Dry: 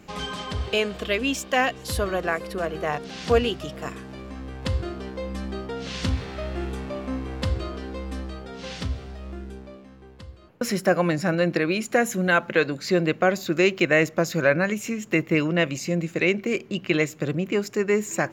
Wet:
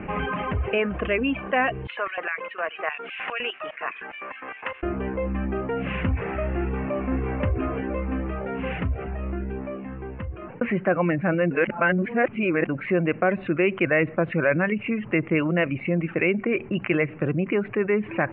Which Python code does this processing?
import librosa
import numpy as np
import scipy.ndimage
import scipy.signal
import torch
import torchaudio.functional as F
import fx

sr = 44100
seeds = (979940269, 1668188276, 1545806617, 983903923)

y = fx.filter_lfo_highpass(x, sr, shape='square', hz=4.9, low_hz=970.0, high_hz=2700.0, q=0.76, at=(1.87, 4.83))
y = fx.echo_throw(y, sr, start_s=6.61, length_s=0.7, ms=500, feedback_pct=45, wet_db=-4.5)
y = fx.edit(y, sr, fx.reverse_span(start_s=11.51, length_s=1.18), tone=tone)
y = scipy.signal.sosfilt(scipy.signal.butter(12, 2700.0, 'lowpass', fs=sr, output='sos'), y)
y = fx.dereverb_blind(y, sr, rt60_s=0.55)
y = fx.env_flatten(y, sr, amount_pct=50)
y = y * librosa.db_to_amplitude(-2.5)